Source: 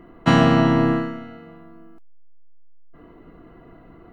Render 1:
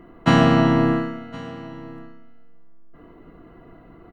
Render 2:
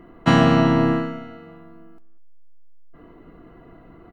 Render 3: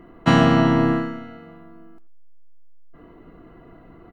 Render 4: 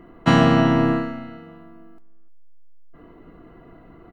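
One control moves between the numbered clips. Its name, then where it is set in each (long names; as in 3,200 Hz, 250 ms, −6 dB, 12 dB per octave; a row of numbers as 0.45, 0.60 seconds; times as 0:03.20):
single-tap delay, delay time: 1,065, 195, 87, 301 milliseconds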